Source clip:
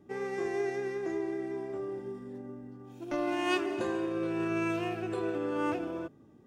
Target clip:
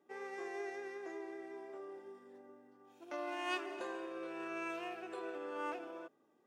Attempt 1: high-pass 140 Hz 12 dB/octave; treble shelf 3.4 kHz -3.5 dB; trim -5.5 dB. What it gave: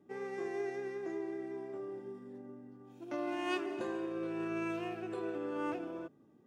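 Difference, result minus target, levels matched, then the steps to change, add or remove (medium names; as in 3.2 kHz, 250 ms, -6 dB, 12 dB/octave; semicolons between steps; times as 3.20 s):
125 Hz band +15.0 dB
change: high-pass 530 Hz 12 dB/octave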